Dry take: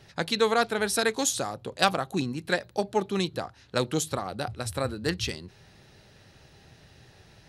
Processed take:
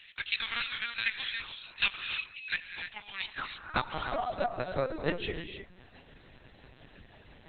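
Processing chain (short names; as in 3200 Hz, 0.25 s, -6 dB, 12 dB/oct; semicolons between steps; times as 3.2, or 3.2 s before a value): reverb removal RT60 0.64 s; low shelf 320 Hz -7 dB; notches 50/100/150/200/250/300 Hz; upward compressor, threshold -45 dBFS; tremolo triangle 5.9 Hz, depth 45%; high-pass sweep 2500 Hz -> 120 Hz, 2.89–5.83; bit-crush 11-bit; non-linear reverb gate 0.34 s rising, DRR 5 dB; LPC vocoder at 8 kHz pitch kept; Opus 20 kbps 48000 Hz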